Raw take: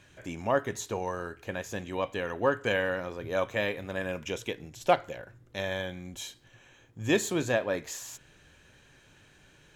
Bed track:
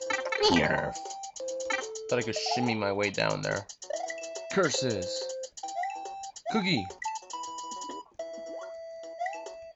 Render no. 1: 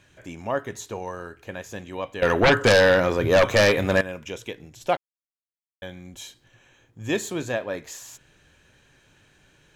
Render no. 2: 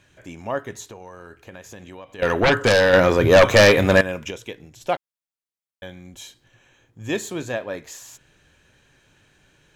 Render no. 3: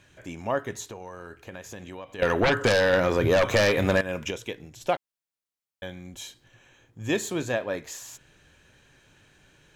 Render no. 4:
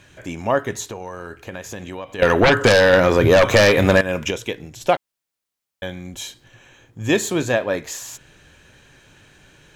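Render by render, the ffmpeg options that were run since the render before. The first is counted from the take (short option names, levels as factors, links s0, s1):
-filter_complex "[0:a]asettb=1/sr,asplit=3[s0][s1][s2];[s0]atrim=end=2.224[s3];[s1]atrim=start=2.22:end=4.01,asetpts=PTS-STARTPTS,afade=t=in:d=0.004:c=qsin,afade=t=out:st=1.786:d=0.004:c=qsin,aeval=exprs='0.266*sin(PI/2*3.98*val(0)/0.266)':c=same[s4];[s2]atrim=start=4.006[s5];[s3][s4]acrossfade=d=0.004:c1=hsin:c2=qsin[s6];[s6][s5]acrossfade=d=0.004:c1=qsin:c2=hsin,asplit=3[s7][s8][s9];[s7]atrim=end=4.97,asetpts=PTS-STARTPTS,afade=t=out:st=4.966:d=0.004:c=hsin[s10];[s8]atrim=start=4.97:end=5.82,asetpts=PTS-STARTPTS,volume=0[s11];[s9]atrim=start=5.82,asetpts=PTS-STARTPTS,afade=t=in:d=0.004:c=hsin[s12];[s10][s11][s12]concat=n=3:v=0:a=1"
-filter_complex "[0:a]asplit=3[s0][s1][s2];[s0]afade=t=out:st=0.89:d=0.02[s3];[s1]acompressor=threshold=0.0178:ratio=6:attack=3.2:release=140:knee=1:detection=peak,afade=t=in:st=0.89:d=0.02,afade=t=out:st=2.18:d=0.02[s4];[s2]afade=t=in:st=2.18:d=0.02[s5];[s3][s4][s5]amix=inputs=3:normalize=0,asettb=1/sr,asplit=3[s6][s7][s8];[s6]atrim=end=2.934[s9];[s7]atrim=start=2.93:end=4.31,asetpts=PTS-STARTPTS,afade=t=in:d=0.004:c=qsin,afade=t=out:st=1.376:d=0.004:c=qsin,acontrast=54[s10];[s8]atrim=start=4.306[s11];[s9][s10]acrossfade=d=0.004:c1=hsin:c2=qsin[s12];[s12][s11]acrossfade=d=0.004:c1=qsin:c2=hsin"
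-af "acompressor=threshold=0.112:ratio=6"
-af "volume=2.51"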